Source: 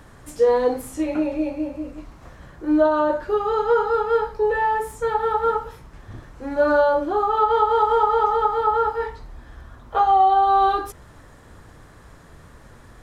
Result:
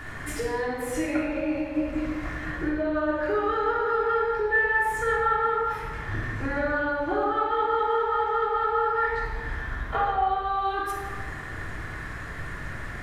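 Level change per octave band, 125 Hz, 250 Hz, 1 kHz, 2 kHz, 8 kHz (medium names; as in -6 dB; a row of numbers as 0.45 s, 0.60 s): +5.5 dB, -3.5 dB, -6.5 dB, +4.5 dB, no reading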